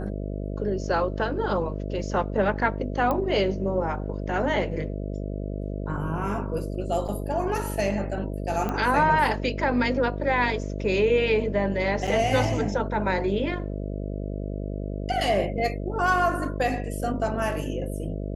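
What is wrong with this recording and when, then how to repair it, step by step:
buzz 50 Hz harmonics 13 -31 dBFS
3.11 s: pop -14 dBFS
7.08–7.09 s: dropout 6 ms
8.69 s: pop -16 dBFS
12.07–12.08 s: dropout 5.9 ms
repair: de-click; de-hum 50 Hz, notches 13; interpolate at 7.08 s, 6 ms; interpolate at 12.07 s, 5.9 ms

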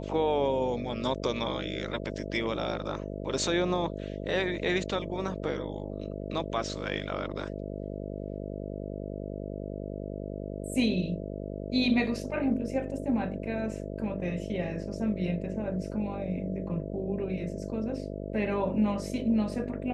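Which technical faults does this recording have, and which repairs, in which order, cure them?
buzz 50 Hz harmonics 13 -37 dBFS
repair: de-hum 50 Hz, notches 13

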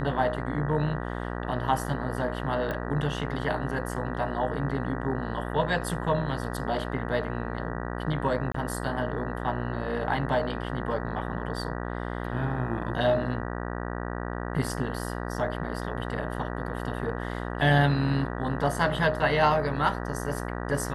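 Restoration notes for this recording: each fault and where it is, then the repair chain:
buzz 60 Hz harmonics 32 -33 dBFS
2.71 s: pop -20 dBFS
8.52–8.54 s: dropout 24 ms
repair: de-click; de-hum 60 Hz, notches 32; interpolate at 8.52 s, 24 ms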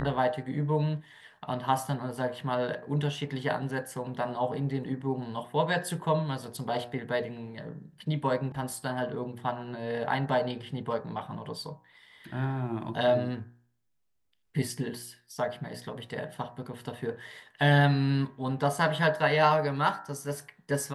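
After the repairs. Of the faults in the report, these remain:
nothing left

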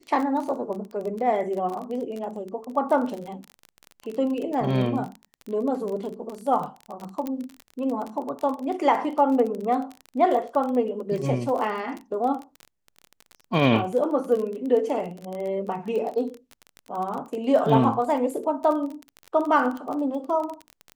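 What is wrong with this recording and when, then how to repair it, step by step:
crackle 28 per s -29 dBFS
7.27 s: pop -17 dBFS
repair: de-click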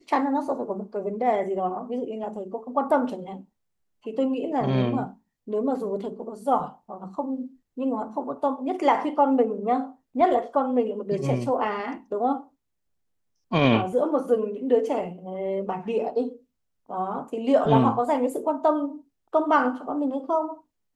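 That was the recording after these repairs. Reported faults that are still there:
nothing left

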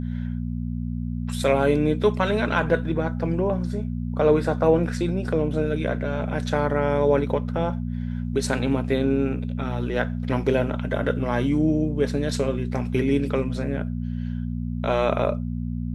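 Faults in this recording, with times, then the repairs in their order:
hum 60 Hz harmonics 4 -28 dBFS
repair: de-hum 60 Hz, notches 4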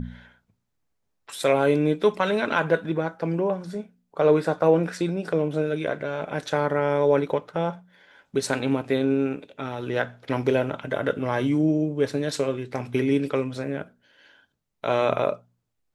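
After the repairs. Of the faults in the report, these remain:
nothing left

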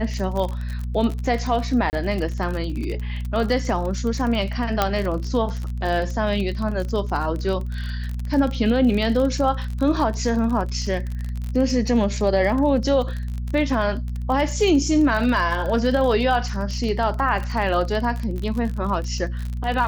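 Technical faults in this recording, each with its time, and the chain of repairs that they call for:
crackle 35 per s -26 dBFS
hum 60 Hz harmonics 4 -27 dBFS
1.90–1.93 s: dropout 29 ms
4.82 s: pop -4 dBFS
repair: de-click; de-hum 60 Hz, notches 4; interpolate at 1.90 s, 29 ms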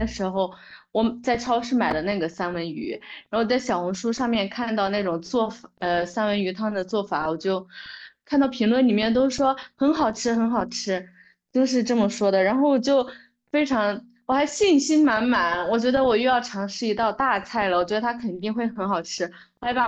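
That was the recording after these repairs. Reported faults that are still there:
nothing left

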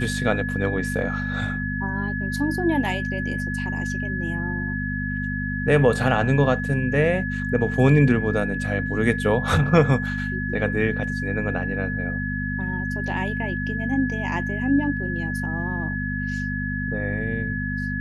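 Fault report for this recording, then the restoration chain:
hum 50 Hz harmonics 5 -28 dBFS
whine 1.7 kHz -29 dBFS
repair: band-stop 1.7 kHz, Q 30; de-hum 50 Hz, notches 5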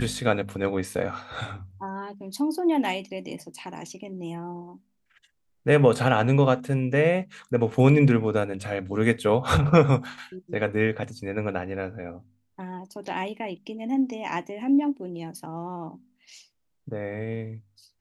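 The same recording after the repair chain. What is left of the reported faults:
nothing left

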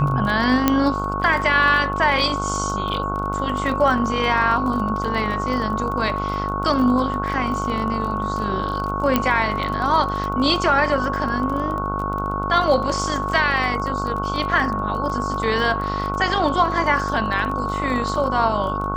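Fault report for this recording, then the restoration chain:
buzz 50 Hz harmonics 30 -27 dBFS
crackle 25 per s -27 dBFS
whine 1.1 kHz -25 dBFS
0.68 s: pop -2 dBFS
9.16 s: pop -4 dBFS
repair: de-click; de-hum 50 Hz, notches 30; band-stop 1.1 kHz, Q 30

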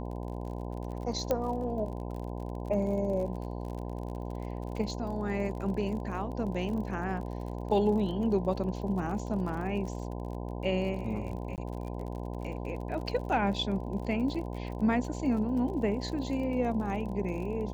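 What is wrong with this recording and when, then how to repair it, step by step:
buzz 60 Hz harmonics 17 -37 dBFS
crackle 43 per s -39 dBFS
1.31 s: pop -15 dBFS
11.56–11.58 s: dropout 18 ms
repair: de-click; de-hum 60 Hz, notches 17; interpolate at 11.56 s, 18 ms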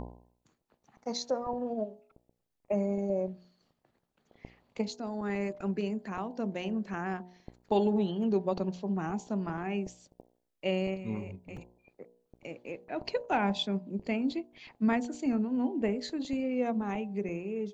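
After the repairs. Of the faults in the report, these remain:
nothing left

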